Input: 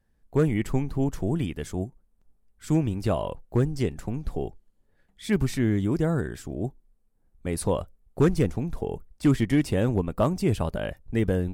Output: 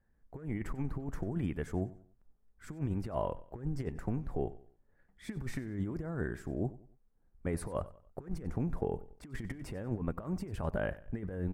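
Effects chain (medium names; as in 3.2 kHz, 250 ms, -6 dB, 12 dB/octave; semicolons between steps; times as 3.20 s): resonant high shelf 2.4 kHz -9.5 dB, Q 1.5; compressor with a negative ratio -27 dBFS, ratio -0.5; on a send: feedback delay 94 ms, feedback 36%, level -18 dB; on the sum: trim -7.5 dB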